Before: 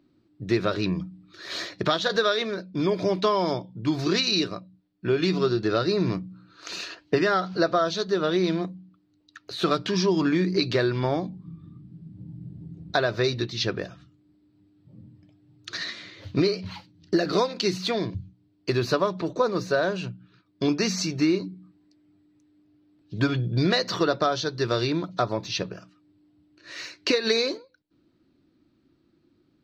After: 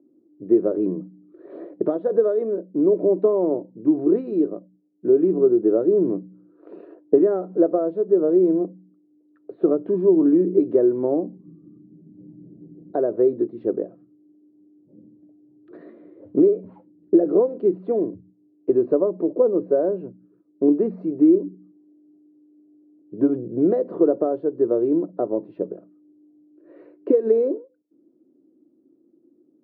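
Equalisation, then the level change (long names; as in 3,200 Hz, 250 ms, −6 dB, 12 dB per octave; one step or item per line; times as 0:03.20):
flat-topped band-pass 380 Hz, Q 1.3
high-frequency loss of the air 330 metres
+8.5 dB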